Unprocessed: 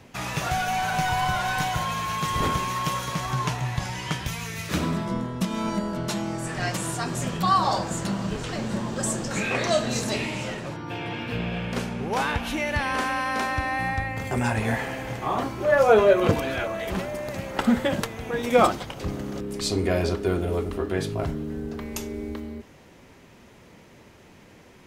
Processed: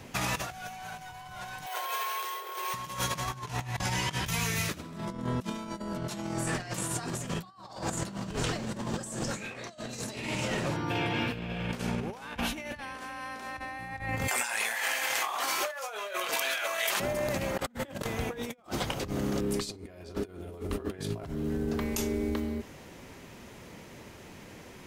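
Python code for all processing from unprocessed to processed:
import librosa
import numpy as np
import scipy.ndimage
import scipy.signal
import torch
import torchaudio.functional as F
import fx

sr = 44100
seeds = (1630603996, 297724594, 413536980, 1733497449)

y = fx.chain(x, sr, fx.cheby1_highpass(hz=350.0, order=10),
    fx.resample_bad(factor=3, down='filtered', up='hold'), at=(1.66, 2.74))
y = fx.chain(y, sr, fx.highpass(hz=950.0, slope=12),
    fx.high_shelf(hz=2600.0, db=8.5),
    fx.over_compress(threshold_db=-35.0, ratio=-1.0), at=(14.28, 17.0))
y = fx.over_compress(y, sr, threshold_db=-32.0, ratio=-0.5)
y = fx.high_shelf(y, sr, hz=6400.0, db=5.0)
y = F.gain(torch.from_numpy(y), -2.0).numpy()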